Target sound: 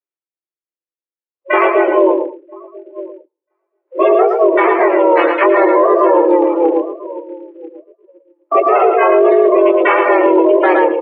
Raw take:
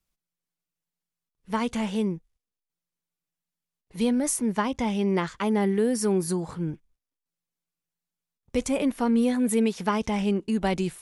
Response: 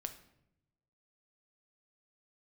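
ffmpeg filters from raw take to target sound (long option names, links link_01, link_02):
-filter_complex "[0:a]flanger=delay=16.5:depth=3:speed=1.6,asplit=4[link_01][link_02][link_03][link_04];[link_02]asetrate=35002,aresample=44100,atempo=1.25992,volume=-2dB[link_05];[link_03]asetrate=52444,aresample=44100,atempo=0.840896,volume=-12dB[link_06];[link_04]asetrate=88200,aresample=44100,atempo=0.5,volume=-1dB[link_07];[link_01][link_05][link_06][link_07]amix=inputs=4:normalize=0,asplit=2[link_08][link_09];[link_09]adelay=986,lowpass=frequency=1200:poles=1,volume=-18.5dB,asplit=2[link_10][link_11];[link_11]adelay=986,lowpass=frequency=1200:poles=1,volume=0.31,asplit=2[link_12][link_13];[link_13]adelay=986,lowpass=frequency=1200:poles=1,volume=0.31[link_14];[link_08][link_10][link_12][link_14]amix=inputs=4:normalize=0,asplit=2[link_15][link_16];[1:a]atrim=start_sample=2205,adelay=107[link_17];[link_16][link_17]afir=irnorm=-1:irlink=0,volume=-9.5dB[link_18];[link_15][link_18]amix=inputs=2:normalize=0,acontrast=43,afftdn=noise_reduction=30:noise_floor=-29,asplit=2[link_19][link_20];[link_20]aecho=0:1:113:0.447[link_21];[link_19][link_21]amix=inputs=2:normalize=0,acrusher=bits=7:mode=log:mix=0:aa=0.000001,highpass=frequency=160:width_type=q:width=0.5412,highpass=frequency=160:width_type=q:width=1.307,lowpass=frequency=2600:width_type=q:width=0.5176,lowpass=frequency=2600:width_type=q:width=0.7071,lowpass=frequency=2600:width_type=q:width=1.932,afreqshift=170,alimiter=level_in=12dB:limit=-1dB:release=50:level=0:latency=1,volume=-1dB"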